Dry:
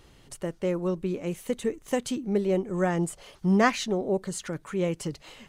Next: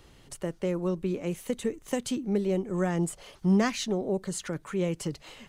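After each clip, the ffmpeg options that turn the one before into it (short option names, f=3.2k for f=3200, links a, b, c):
-filter_complex "[0:a]acrossover=split=280|3000[a][b][c];[b]acompressor=threshold=-29dB:ratio=3[d];[a][d][c]amix=inputs=3:normalize=0"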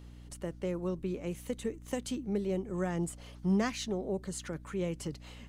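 -af "aeval=exprs='val(0)+0.00708*(sin(2*PI*60*n/s)+sin(2*PI*2*60*n/s)/2+sin(2*PI*3*60*n/s)/3+sin(2*PI*4*60*n/s)/4+sin(2*PI*5*60*n/s)/5)':c=same,volume=-5.5dB"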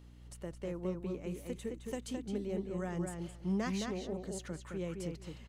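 -filter_complex "[0:a]asplit=2[a][b];[b]adelay=215,lowpass=f=3.8k:p=1,volume=-4dB,asplit=2[c][d];[d]adelay=215,lowpass=f=3.8k:p=1,volume=0.16,asplit=2[e][f];[f]adelay=215,lowpass=f=3.8k:p=1,volume=0.16[g];[a][c][e][g]amix=inputs=4:normalize=0,volume=-5.5dB"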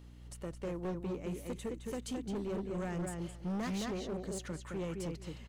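-af "volume=35.5dB,asoftclip=hard,volume=-35.5dB,volume=2dB"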